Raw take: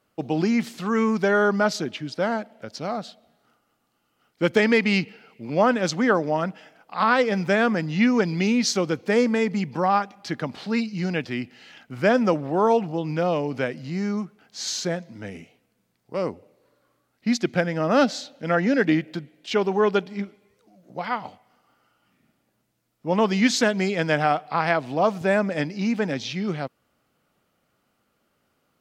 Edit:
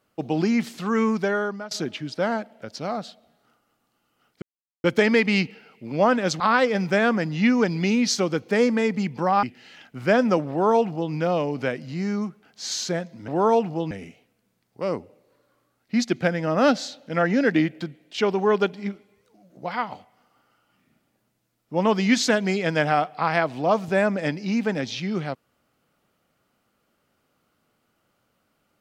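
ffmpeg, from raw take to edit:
-filter_complex "[0:a]asplit=7[a][b][c][d][e][f][g];[a]atrim=end=1.71,asetpts=PTS-STARTPTS,afade=t=out:st=1.08:d=0.63:silence=0.0707946[h];[b]atrim=start=1.71:end=4.42,asetpts=PTS-STARTPTS,afade=t=in:d=0.004:c=hsin:silence=0.0707946,afade=t=out:st=2.706:d=0.004:c=hsin,apad=pad_dur=0.42[i];[c]atrim=start=4.42:end=5.982,asetpts=PTS-STARTPTS,afade=t=in:d=0.004:c=hsin[j];[d]atrim=start=6.968:end=10.002[k];[e]atrim=start=11.388:end=15.242[l];[f]atrim=start=12.458:end=13.092[m];[g]atrim=start=15.238[n];[h][i][j]concat=n=3:v=0:a=1[o];[o][k]acrossfade=d=0.004:c1=hsin:c2=hsin[p];[p][l]acrossfade=d=0.004:c1=hsin:c2=hsin[q];[q][m]acrossfade=d=0.004:c1=hsin:c2=hsin[r];[r][n]acrossfade=d=0.004:c1=hsin:c2=hsin"

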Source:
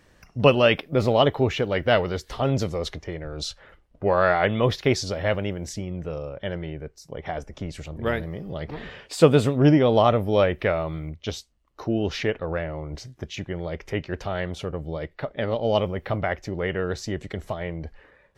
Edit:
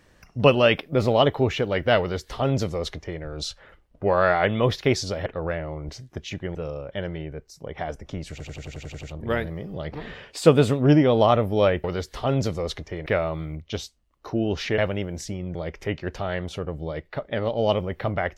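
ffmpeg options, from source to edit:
-filter_complex "[0:a]asplit=15[a][b][c][d][e][f][g][h][i][j][k][l][m][n][o];[a]atrim=end=5.262[p];[b]atrim=start=12.318:end=13.612[q];[c]atrim=start=6.028:end=7.882[r];[d]atrim=start=7.788:end=7.882[s];[e]atrim=start=7.788:end=7.882[t];[f]atrim=start=7.788:end=7.882[u];[g]atrim=start=7.788:end=7.882[v];[h]atrim=start=7.788:end=7.882[w];[i]atrim=start=7.788:end=7.882[x];[j]atrim=start=7.788:end=7.882[y];[k]atrim=start=7.788:end=10.602[z];[l]atrim=start=1.998:end=3.222[aa];[m]atrim=start=10.598:end=12.322[ab];[n]atrim=start=5.258:end=6.032[ac];[o]atrim=start=13.608[ad];[p][q]acrossfade=d=0.004:c1=hsin:c2=hsin[ae];[ae][r]acrossfade=d=0.004:c1=hsin:c2=hsin[af];[af][s]acrossfade=d=0.004:c1=hsin:c2=hsin[ag];[ag][t]acrossfade=d=0.004:c1=hsin:c2=hsin[ah];[ah][u]acrossfade=d=0.004:c1=hsin:c2=hsin[ai];[ai][v]acrossfade=d=0.004:c1=hsin:c2=hsin[aj];[aj][w]acrossfade=d=0.004:c1=hsin:c2=hsin[ak];[ak][x]acrossfade=d=0.004:c1=hsin:c2=hsin[al];[al][y]acrossfade=d=0.004:c1=hsin:c2=hsin[am];[am][z]acrossfade=d=0.004:c1=hsin:c2=hsin[an];[an][aa]acrossfade=d=0.004:c1=hsin:c2=hsin[ao];[ao][ab]acrossfade=d=0.004:c1=hsin:c2=hsin[ap];[ap][ac]acrossfade=d=0.004:c1=hsin:c2=hsin[aq];[aq][ad]acrossfade=d=0.004:c1=hsin:c2=hsin"

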